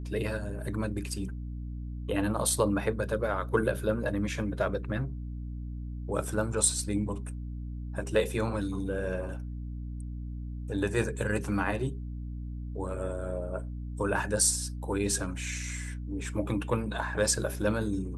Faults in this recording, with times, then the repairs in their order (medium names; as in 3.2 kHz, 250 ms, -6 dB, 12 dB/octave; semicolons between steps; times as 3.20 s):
hum 60 Hz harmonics 5 -37 dBFS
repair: de-hum 60 Hz, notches 5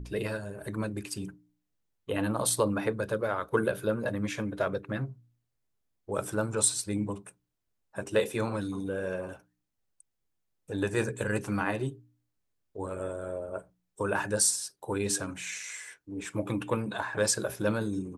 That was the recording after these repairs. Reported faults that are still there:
nothing left